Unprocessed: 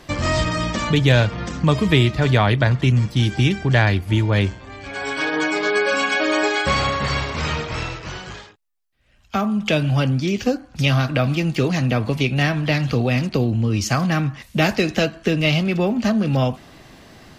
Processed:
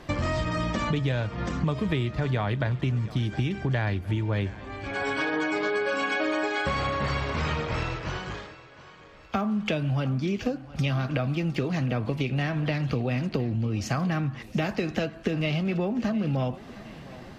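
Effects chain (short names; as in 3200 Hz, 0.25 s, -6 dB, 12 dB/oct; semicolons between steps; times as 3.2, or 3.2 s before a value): high shelf 3600 Hz -10 dB; compressor, threshold -24 dBFS, peak gain reduction 13 dB; on a send: thinning echo 0.713 s, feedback 53%, high-pass 160 Hz, level -17.5 dB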